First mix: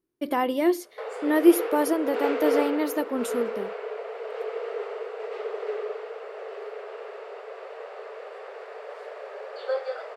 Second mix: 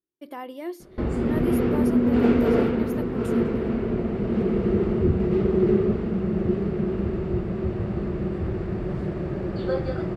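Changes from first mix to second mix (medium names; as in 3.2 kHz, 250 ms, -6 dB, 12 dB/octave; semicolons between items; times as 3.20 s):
speech -11.5 dB; background: remove brick-wall FIR high-pass 410 Hz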